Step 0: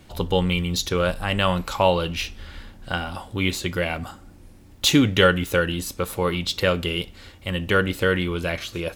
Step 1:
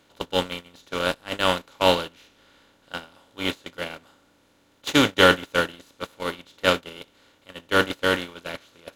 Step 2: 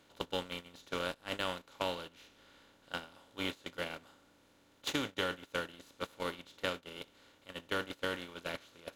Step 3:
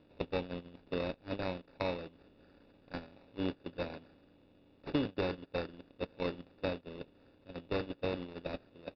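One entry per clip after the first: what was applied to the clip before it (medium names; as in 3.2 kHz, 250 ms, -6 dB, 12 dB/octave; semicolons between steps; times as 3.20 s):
spectral levelling over time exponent 0.4; gate -12 dBFS, range -33 dB; bass shelf 280 Hz -8 dB
compression 6:1, threshold -28 dBFS, peak gain reduction 16.5 dB; trim -5 dB
median filter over 41 samples; sample-and-hold 14×; resampled via 11.025 kHz; trim +6 dB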